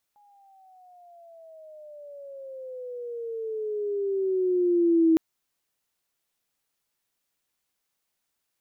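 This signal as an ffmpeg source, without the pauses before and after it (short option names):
-f lavfi -i "aevalsrc='pow(10,(-15.5+40*(t/5.01-1))/20)*sin(2*PI*832*5.01/(-16.5*log(2)/12)*(exp(-16.5*log(2)/12*t/5.01)-1))':d=5.01:s=44100"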